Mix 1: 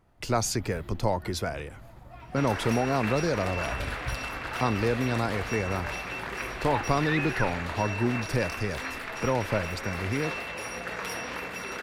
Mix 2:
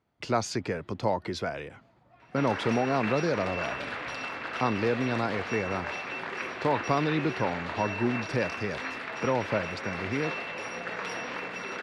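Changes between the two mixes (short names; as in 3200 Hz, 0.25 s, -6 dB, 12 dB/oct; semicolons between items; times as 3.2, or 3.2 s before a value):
first sound -10.5 dB; master: add BPF 140–4600 Hz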